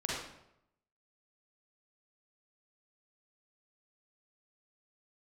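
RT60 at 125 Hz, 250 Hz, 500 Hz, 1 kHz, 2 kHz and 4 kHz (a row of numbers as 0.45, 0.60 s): 0.95, 0.80, 0.85, 0.80, 0.70, 0.60 s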